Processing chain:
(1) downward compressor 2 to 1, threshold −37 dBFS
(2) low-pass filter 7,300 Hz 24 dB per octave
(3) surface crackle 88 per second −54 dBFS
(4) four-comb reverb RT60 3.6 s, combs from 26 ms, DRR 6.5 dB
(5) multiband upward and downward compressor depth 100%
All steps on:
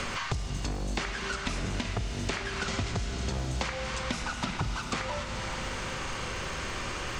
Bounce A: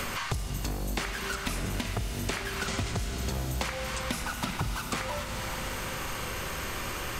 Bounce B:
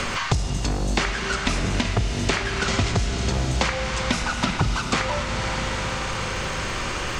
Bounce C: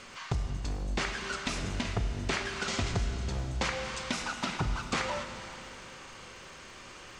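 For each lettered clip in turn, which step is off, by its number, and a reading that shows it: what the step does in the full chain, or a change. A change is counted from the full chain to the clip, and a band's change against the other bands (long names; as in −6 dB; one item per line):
2, 8 kHz band +2.5 dB
1, average gain reduction 5.5 dB
5, change in momentary loudness spread +12 LU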